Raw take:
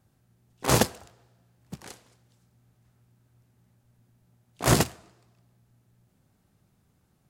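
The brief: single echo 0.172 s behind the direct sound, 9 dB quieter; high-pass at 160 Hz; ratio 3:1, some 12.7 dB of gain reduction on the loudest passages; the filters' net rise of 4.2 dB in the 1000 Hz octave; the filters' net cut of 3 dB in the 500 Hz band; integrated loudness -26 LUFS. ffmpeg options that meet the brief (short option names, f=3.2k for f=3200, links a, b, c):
-af "highpass=160,equalizer=f=500:t=o:g=-6,equalizer=f=1k:t=o:g=7,acompressor=threshold=-34dB:ratio=3,aecho=1:1:172:0.355,volume=12dB"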